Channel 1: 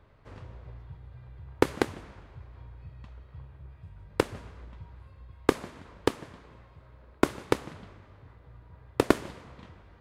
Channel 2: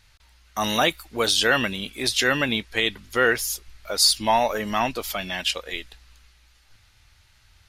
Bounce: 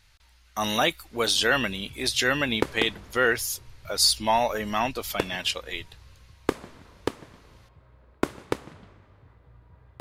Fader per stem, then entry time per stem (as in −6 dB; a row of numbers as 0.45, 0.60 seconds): −2.5, −2.5 decibels; 1.00, 0.00 seconds